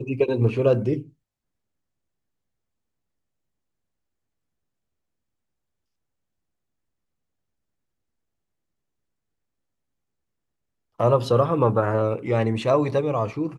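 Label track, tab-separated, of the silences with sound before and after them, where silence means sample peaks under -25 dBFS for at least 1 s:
0.990000	11.000000	silence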